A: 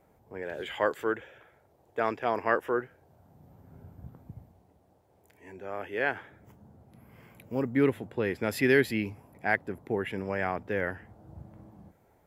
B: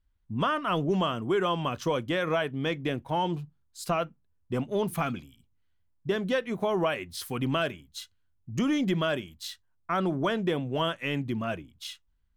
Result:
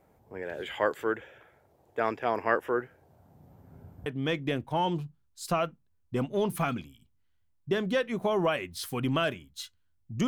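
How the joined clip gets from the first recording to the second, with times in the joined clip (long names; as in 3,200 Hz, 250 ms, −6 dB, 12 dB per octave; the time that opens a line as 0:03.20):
A
0:04.06: continue with B from 0:02.44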